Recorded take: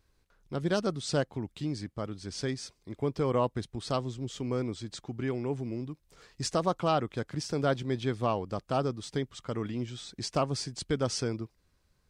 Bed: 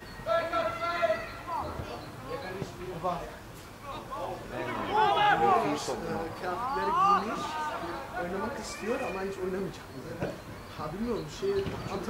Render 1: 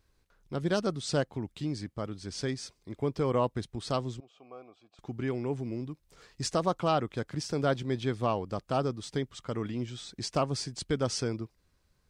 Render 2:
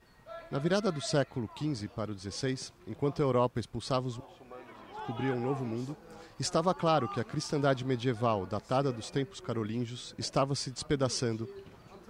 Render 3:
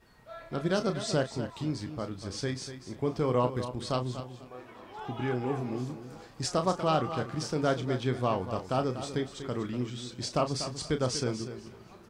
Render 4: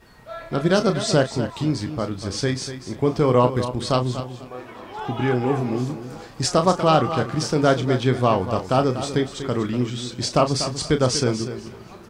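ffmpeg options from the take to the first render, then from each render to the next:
-filter_complex "[0:a]asettb=1/sr,asplit=3[a][b][c];[a]atrim=end=4.204[d];[b]atrim=start=4.2:end=4.99,asetpts=PTS-STARTPTS,afade=t=in:d=0.004:c=qsin,afade=t=out:st=0.786:d=0.004:c=qsin,asplit=3[e][f][g];[e]bandpass=f=730:t=q:w=8,volume=0dB[h];[f]bandpass=f=1.09k:t=q:w=8,volume=-6dB[i];[g]bandpass=f=2.44k:t=q:w=8,volume=-9dB[j];[h][i][j]amix=inputs=3:normalize=0[k];[c]atrim=start=4.986[l];[d][k]acrossfade=d=0.004:c1=hsin:c2=qsin[m];[m][l]acrossfade=d=0.004:c1=qsin:c2=hsin"
-filter_complex "[1:a]volume=-17.5dB[a];[0:a][a]amix=inputs=2:normalize=0"
-filter_complex "[0:a]asplit=2[a][b];[b]adelay=32,volume=-9dB[c];[a][c]amix=inputs=2:normalize=0,asplit=2[d][e];[e]aecho=0:1:242|484|726:0.282|0.0592|0.0124[f];[d][f]amix=inputs=2:normalize=0"
-af "volume=10dB"

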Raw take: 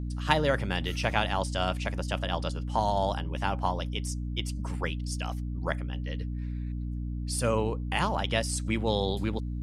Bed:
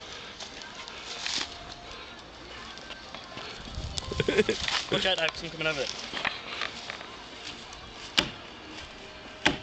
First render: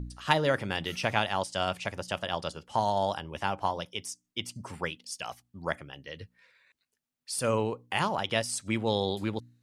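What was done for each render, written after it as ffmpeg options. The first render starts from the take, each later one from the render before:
-af "bandreject=f=60:t=h:w=4,bandreject=f=120:t=h:w=4,bandreject=f=180:t=h:w=4,bandreject=f=240:t=h:w=4,bandreject=f=300:t=h:w=4"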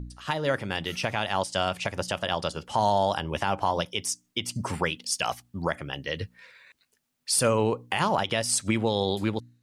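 -af "dynaudnorm=f=290:g=7:m=12.5dB,alimiter=limit=-12.5dB:level=0:latency=1:release=163"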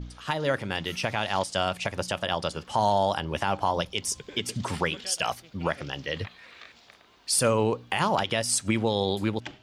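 -filter_complex "[1:a]volume=-16dB[a];[0:a][a]amix=inputs=2:normalize=0"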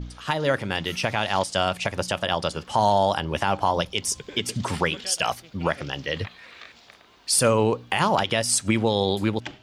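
-af "volume=3.5dB"

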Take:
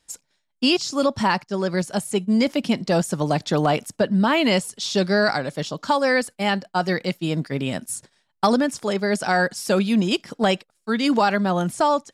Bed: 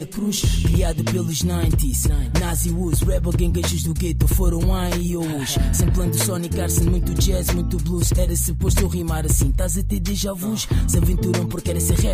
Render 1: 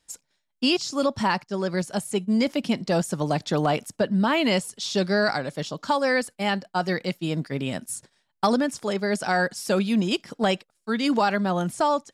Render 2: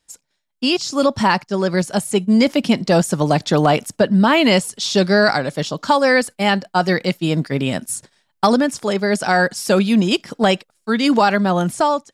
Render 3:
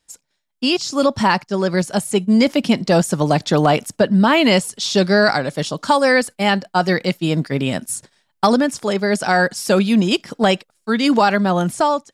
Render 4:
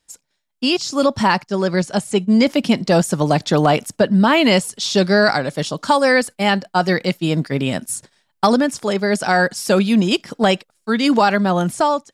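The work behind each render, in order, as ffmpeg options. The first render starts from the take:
-af "volume=-3dB"
-af "dynaudnorm=f=510:g=3:m=9.5dB"
-filter_complex "[0:a]asettb=1/sr,asplit=3[a][b][c];[a]atrim=end=5.574[d];[b]atrim=start=5.57:end=6.12,asetpts=PTS-STARTPTS,afade=t=in:d=0.004:c=qsin,afade=t=out:st=0.546:d=0.004:c=qsin,equalizer=f=9.3k:t=o:w=0.36:g=9.5[e];[c]atrim=start=6.116[f];[d][e]acrossfade=d=0.004:c1=hsin:c2=qsin[g];[g][f]acrossfade=d=0.004:c1=qsin:c2=hsin"
-filter_complex "[0:a]asettb=1/sr,asplit=3[a][b][c];[a]atrim=end=1.714[d];[b]atrim=start=1.71:end=2.47,asetpts=PTS-STARTPTS,afade=t=in:d=0.004:c=qsin,afade=t=out:st=0.756:d=0.004:c=qsin,lowpass=8.3k[e];[c]atrim=start=2.466[f];[d][e]acrossfade=d=0.004:c1=hsin:c2=qsin[g];[g][f]acrossfade=d=0.004:c1=qsin:c2=hsin"

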